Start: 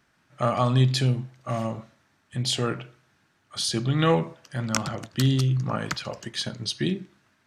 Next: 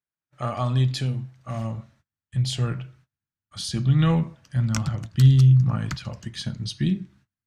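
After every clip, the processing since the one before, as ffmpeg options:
ffmpeg -i in.wav -af "agate=range=-28dB:threshold=-57dB:ratio=16:detection=peak,asubboost=boost=8.5:cutoff=150,flanger=delay=1.9:depth=2.3:regen=-81:speed=0.38:shape=sinusoidal" out.wav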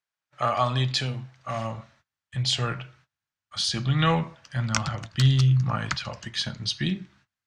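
ffmpeg -i in.wav -filter_complex "[0:a]acrossover=split=540 7300:gain=0.251 1 0.112[link_01][link_02][link_03];[link_01][link_02][link_03]amix=inputs=3:normalize=0,volume=7dB" out.wav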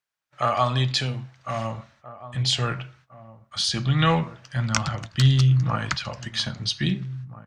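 ffmpeg -i in.wav -filter_complex "[0:a]asplit=2[link_01][link_02];[link_02]adelay=1633,volume=-16dB,highshelf=frequency=4000:gain=-36.7[link_03];[link_01][link_03]amix=inputs=2:normalize=0,volume=2dB" out.wav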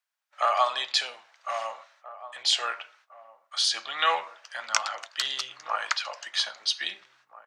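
ffmpeg -i in.wav -af "highpass=frequency=620:width=0.5412,highpass=frequency=620:width=1.3066" out.wav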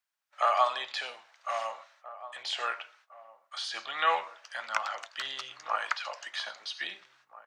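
ffmpeg -i in.wav -filter_complex "[0:a]acrossover=split=2500[link_01][link_02];[link_02]acompressor=threshold=-37dB:ratio=4:attack=1:release=60[link_03];[link_01][link_03]amix=inputs=2:normalize=0,volume=-1.5dB" out.wav

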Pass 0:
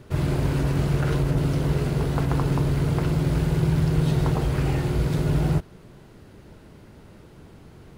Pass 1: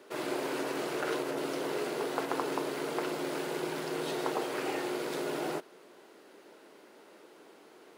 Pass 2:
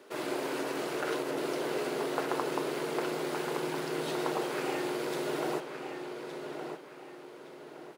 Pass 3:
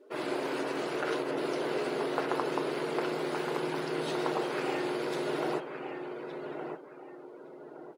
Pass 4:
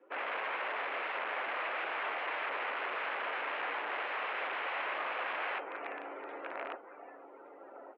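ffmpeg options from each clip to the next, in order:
ffmpeg -i in.wav -af "highpass=frequency=330:width=0.5412,highpass=frequency=330:width=1.3066,volume=-2dB" out.wav
ffmpeg -i in.wav -filter_complex "[0:a]asplit=2[link_01][link_02];[link_02]adelay=1166,lowpass=frequency=4300:poles=1,volume=-6.5dB,asplit=2[link_03][link_04];[link_04]adelay=1166,lowpass=frequency=4300:poles=1,volume=0.37,asplit=2[link_05][link_06];[link_06]adelay=1166,lowpass=frequency=4300:poles=1,volume=0.37,asplit=2[link_07][link_08];[link_08]adelay=1166,lowpass=frequency=4300:poles=1,volume=0.37[link_09];[link_01][link_03][link_05][link_07][link_09]amix=inputs=5:normalize=0" out.wav
ffmpeg -i in.wav -af "afftdn=noise_reduction=17:noise_floor=-51,volume=1dB" out.wav
ffmpeg -i in.wav -af "aeval=exprs='(mod(33.5*val(0)+1,2)-1)/33.5':channel_layout=same,highpass=frequency=590:width_type=q:width=0.5412,highpass=frequency=590:width_type=q:width=1.307,lowpass=frequency=2700:width_type=q:width=0.5176,lowpass=frequency=2700:width_type=q:width=0.7071,lowpass=frequency=2700:width_type=q:width=1.932,afreqshift=-74,volume=2.5dB" out.wav

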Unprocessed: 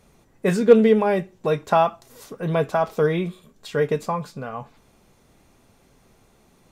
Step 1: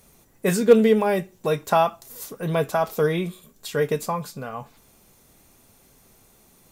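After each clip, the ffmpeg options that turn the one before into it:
ffmpeg -i in.wav -af "aemphasis=mode=production:type=50fm,volume=-1dB" out.wav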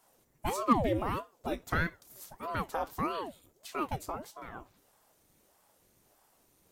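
ffmpeg -i in.wav -af "aeval=exprs='val(0)*sin(2*PI*480*n/s+480*0.8/1.6*sin(2*PI*1.6*n/s))':channel_layout=same,volume=-9dB" out.wav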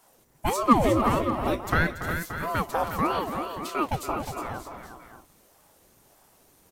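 ffmpeg -i in.wav -af "aecho=1:1:177|284|359|577|621:0.126|0.282|0.398|0.251|0.133,volume=7dB" out.wav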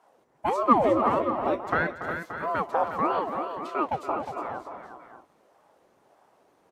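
ffmpeg -i in.wav -af "bandpass=frequency=700:width_type=q:width=0.74:csg=0,volume=2.5dB" out.wav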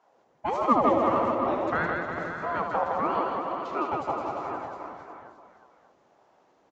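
ffmpeg -i in.wav -filter_complex "[0:a]asplit=2[link_01][link_02];[link_02]aecho=0:1:76|162|452|712:0.447|0.668|0.237|0.299[link_03];[link_01][link_03]amix=inputs=2:normalize=0,aresample=16000,aresample=44100,volume=-3dB" out.wav

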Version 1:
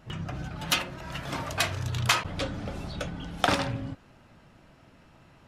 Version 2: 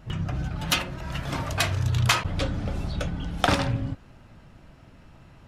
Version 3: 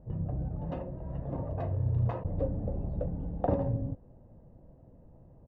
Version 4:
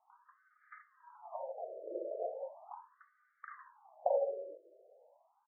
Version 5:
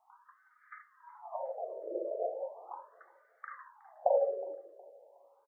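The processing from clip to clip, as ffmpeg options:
ffmpeg -i in.wav -af "lowshelf=frequency=120:gain=10.5,volume=1.5dB" out.wav
ffmpeg -i in.wav -af "lowpass=frequency=500:width_type=q:width=4.9,aecho=1:1:1.1:0.45,volume=-7.5dB" out.wav
ffmpeg -i in.wav -filter_complex "[0:a]acrossover=split=230|790[link_01][link_02][link_03];[link_01]adelay=110[link_04];[link_02]adelay=620[link_05];[link_04][link_05][link_03]amix=inputs=3:normalize=0,afftfilt=real='re*between(b*sr/1024,470*pow(1700/470,0.5+0.5*sin(2*PI*0.38*pts/sr))/1.41,470*pow(1700/470,0.5+0.5*sin(2*PI*0.38*pts/sr))*1.41)':imag='im*between(b*sr/1024,470*pow(1700/470,0.5+0.5*sin(2*PI*0.38*pts/sr))/1.41,470*pow(1700/470,0.5+0.5*sin(2*PI*0.38*pts/sr))*1.41)':win_size=1024:overlap=0.75,volume=4dB" out.wav
ffmpeg -i in.wav -af "aecho=1:1:366|732|1098:0.0841|0.0328|0.0128,volume=4dB" out.wav

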